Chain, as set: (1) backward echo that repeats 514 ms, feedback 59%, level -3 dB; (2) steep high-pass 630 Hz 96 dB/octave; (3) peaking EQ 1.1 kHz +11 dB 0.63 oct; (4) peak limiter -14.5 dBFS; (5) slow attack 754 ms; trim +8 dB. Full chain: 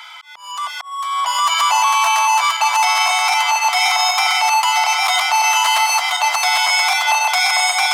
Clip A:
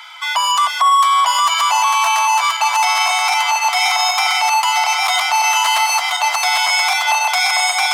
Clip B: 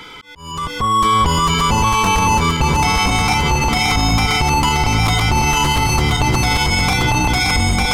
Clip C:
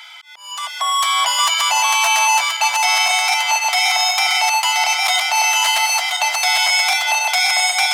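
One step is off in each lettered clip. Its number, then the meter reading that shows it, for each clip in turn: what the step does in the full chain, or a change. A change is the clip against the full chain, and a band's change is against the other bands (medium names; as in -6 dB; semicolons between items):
5, momentary loudness spread change -4 LU; 2, 500 Hz band +9.0 dB; 3, 1 kHz band -4.0 dB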